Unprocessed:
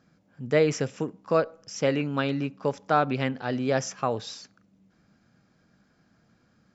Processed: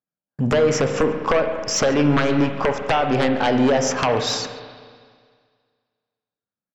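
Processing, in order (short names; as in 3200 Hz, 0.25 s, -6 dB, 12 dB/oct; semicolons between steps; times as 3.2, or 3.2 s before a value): gate -54 dBFS, range -52 dB; bell 810 Hz +9 dB 2.1 oct; in parallel at -3 dB: limiter -12.5 dBFS, peak gain reduction 9.5 dB; on the sum: compressor 16:1, threshold -22 dBFS, peak gain reduction 15.5 dB; sine folder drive 14 dB, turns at -7 dBFS; on a send: echo 0.14 s -23 dB; on the sum: spring tank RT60 1.9 s, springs 34/55 ms, chirp 35 ms, DRR 6 dB; gain -6.5 dB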